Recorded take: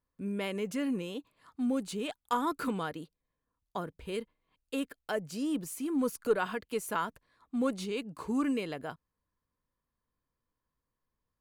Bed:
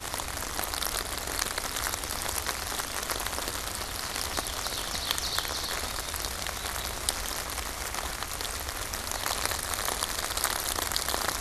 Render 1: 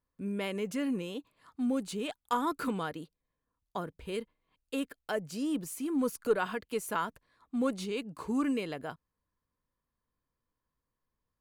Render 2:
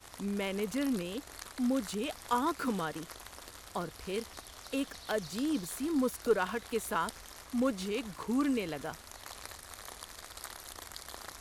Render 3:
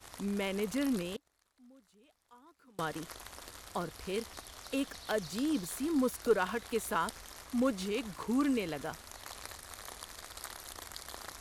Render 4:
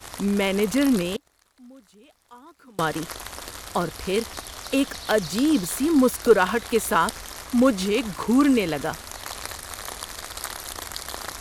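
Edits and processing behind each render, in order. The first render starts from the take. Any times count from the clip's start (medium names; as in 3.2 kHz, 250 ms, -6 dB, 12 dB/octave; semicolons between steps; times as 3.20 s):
no audible change
add bed -16.5 dB
1.16–2.79 s: inverted gate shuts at -34 dBFS, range -29 dB
trim +12 dB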